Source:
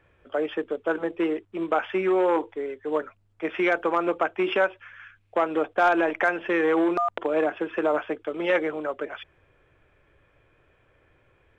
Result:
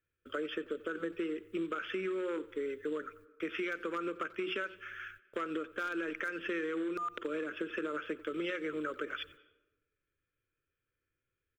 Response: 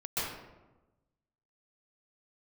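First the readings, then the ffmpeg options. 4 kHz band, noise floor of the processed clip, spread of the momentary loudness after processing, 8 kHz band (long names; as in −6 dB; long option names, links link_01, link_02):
−5.5 dB, below −85 dBFS, 6 LU, can't be measured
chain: -filter_complex "[0:a]aemphasis=mode=production:type=50fm,bandreject=frequency=60:width_type=h:width=6,bandreject=frequency=120:width_type=h:width=6,bandreject=frequency=180:width_type=h:width=6,agate=range=-25dB:threshold=-53dB:ratio=16:detection=peak,firequalizer=gain_entry='entry(320,0);entry(510,-3);entry(750,-27);entry(1300,3);entry(1900,-2);entry(3100,0)':delay=0.05:min_phase=1,alimiter=limit=-22.5dB:level=0:latency=1:release=280,acompressor=threshold=-33dB:ratio=6,asplit=2[link_01][link_02];[link_02]adelay=90,highpass=300,lowpass=3400,asoftclip=type=hard:threshold=-32.5dB,volume=-18dB[link_03];[link_01][link_03]amix=inputs=2:normalize=0,asplit=2[link_04][link_05];[1:a]atrim=start_sample=2205,adelay=54[link_06];[link_05][link_06]afir=irnorm=-1:irlink=0,volume=-29.5dB[link_07];[link_04][link_07]amix=inputs=2:normalize=0"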